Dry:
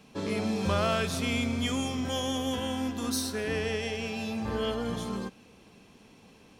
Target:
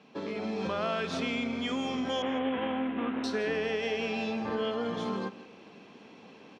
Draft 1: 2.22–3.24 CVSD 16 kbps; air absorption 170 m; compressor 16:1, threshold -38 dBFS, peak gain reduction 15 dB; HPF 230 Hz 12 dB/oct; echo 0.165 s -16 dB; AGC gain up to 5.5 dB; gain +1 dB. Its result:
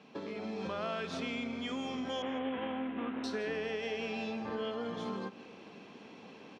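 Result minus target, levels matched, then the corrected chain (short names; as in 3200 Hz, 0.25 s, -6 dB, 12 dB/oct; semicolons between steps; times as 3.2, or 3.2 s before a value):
compressor: peak gain reduction +5.5 dB
2.22–3.24 CVSD 16 kbps; air absorption 170 m; compressor 16:1, threshold -32 dBFS, peak gain reduction 9.5 dB; HPF 230 Hz 12 dB/oct; echo 0.165 s -16 dB; AGC gain up to 5.5 dB; gain +1 dB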